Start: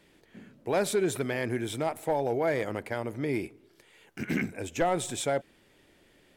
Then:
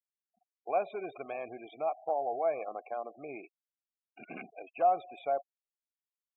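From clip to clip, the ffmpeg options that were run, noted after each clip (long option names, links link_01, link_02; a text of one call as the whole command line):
ffmpeg -i in.wav -filter_complex "[0:a]asplit=3[link_01][link_02][link_03];[link_01]bandpass=frequency=730:width_type=q:width=8,volume=0dB[link_04];[link_02]bandpass=frequency=1090:width_type=q:width=8,volume=-6dB[link_05];[link_03]bandpass=frequency=2440:width_type=q:width=8,volume=-9dB[link_06];[link_04][link_05][link_06]amix=inputs=3:normalize=0,afftfilt=real='re*gte(hypot(re,im),0.00355)':imag='im*gte(hypot(re,im),0.00355)':win_size=1024:overlap=0.75,volume=5dB" out.wav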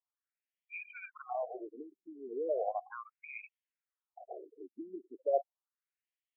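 ffmpeg -i in.wav -af "afftfilt=real='re*between(b*sr/1024,270*pow(2500/270,0.5+0.5*sin(2*PI*0.36*pts/sr))/1.41,270*pow(2500/270,0.5+0.5*sin(2*PI*0.36*pts/sr))*1.41)':imag='im*between(b*sr/1024,270*pow(2500/270,0.5+0.5*sin(2*PI*0.36*pts/sr))/1.41,270*pow(2500/270,0.5+0.5*sin(2*PI*0.36*pts/sr))*1.41)':win_size=1024:overlap=0.75,volume=5.5dB" out.wav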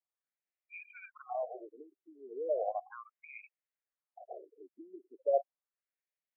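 ffmpeg -i in.wav -af "highpass=460,equalizer=frequency=570:width_type=q:width=4:gain=4,equalizer=frequency=970:width_type=q:width=4:gain=-4,equalizer=frequency=1400:width_type=q:width=4:gain=-4,lowpass=frequency=2300:width=0.5412,lowpass=frequency=2300:width=1.3066" out.wav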